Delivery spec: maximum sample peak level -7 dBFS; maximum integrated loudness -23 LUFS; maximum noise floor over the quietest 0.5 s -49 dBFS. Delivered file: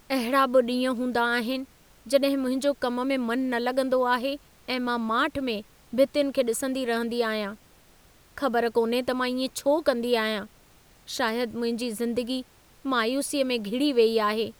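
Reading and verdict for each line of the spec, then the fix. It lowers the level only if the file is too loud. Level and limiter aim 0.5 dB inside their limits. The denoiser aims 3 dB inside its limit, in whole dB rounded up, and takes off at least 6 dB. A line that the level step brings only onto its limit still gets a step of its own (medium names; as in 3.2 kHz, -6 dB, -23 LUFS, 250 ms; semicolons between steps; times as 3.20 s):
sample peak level -8.5 dBFS: pass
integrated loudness -26.0 LUFS: pass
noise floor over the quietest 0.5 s -56 dBFS: pass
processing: none needed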